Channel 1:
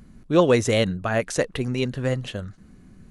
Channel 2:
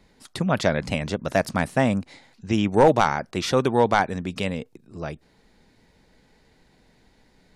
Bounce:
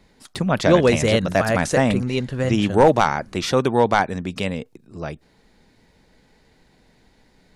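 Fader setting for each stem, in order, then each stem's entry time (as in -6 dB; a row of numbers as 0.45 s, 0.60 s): +1.5 dB, +2.0 dB; 0.35 s, 0.00 s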